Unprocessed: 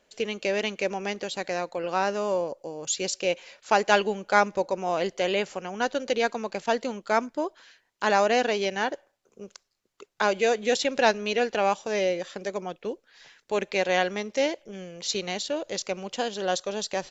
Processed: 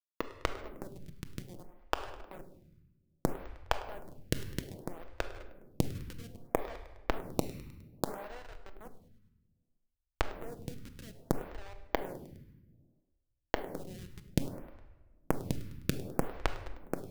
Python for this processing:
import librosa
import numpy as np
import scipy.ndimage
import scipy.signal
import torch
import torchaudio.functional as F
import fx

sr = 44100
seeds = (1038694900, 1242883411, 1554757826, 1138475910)

p1 = scipy.signal.sosfilt(scipy.signal.butter(2, 340.0, 'highpass', fs=sr, output='sos'), x)
p2 = fx.high_shelf(p1, sr, hz=2400.0, db=-10.0)
p3 = fx.hum_notches(p2, sr, base_hz=50, count=9)
p4 = fx.rider(p3, sr, range_db=4, speed_s=2.0)
p5 = p3 + (p4 * 10.0 ** (2.0 / 20.0))
p6 = fx.schmitt(p5, sr, flips_db=-15.0)
p7 = fx.gate_flip(p6, sr, shuts_db=-31.0, range_db=-32)
p8 = p7 + fx.echo_feedback(p7, sr, ms=103, feedback_pct=53, wet_db=-18.5, dry=0)
p9 = fx.room_shoebox(p8, sr, seeds[0], volume_m3=810.0, walls='mixed', distance_m=0.62)
p10 = np.repeat(p9[::3], 3)[:len(p9)]
p11 = fx.stagger_phaser(p10, sr, hz=0.62)
y = p11 * 10.0 ** (11.0 / 20.0)